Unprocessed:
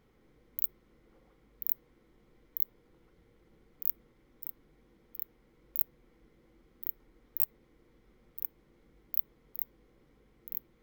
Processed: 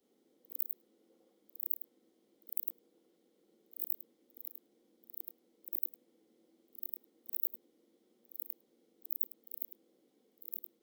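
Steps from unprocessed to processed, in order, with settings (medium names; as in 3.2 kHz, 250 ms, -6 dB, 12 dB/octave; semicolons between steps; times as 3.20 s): short-time spectra conjugated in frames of 208 ms; steep high-pass 210 Hz 36 dB/octave; companded quantiser 8-bit; high-order bell 1.5 kHz -10.5 dB; trim -1 dB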